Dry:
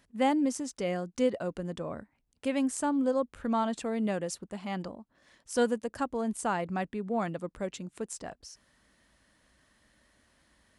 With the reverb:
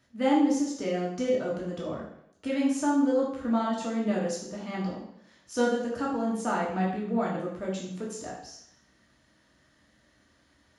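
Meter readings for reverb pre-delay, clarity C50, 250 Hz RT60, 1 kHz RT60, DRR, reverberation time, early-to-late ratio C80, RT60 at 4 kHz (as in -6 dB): 3 ms, 3.5 dB, 0.70 s, 0.75 s, -4.5 dB, 0.70 s, 7.0 dB, 0.70 s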